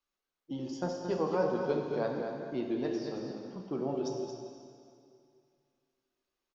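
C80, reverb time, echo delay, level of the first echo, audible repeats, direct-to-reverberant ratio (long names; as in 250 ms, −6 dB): 2.5 dB, 2.4 s, 225 ms, −7.5 dB, 1, 0.5 dB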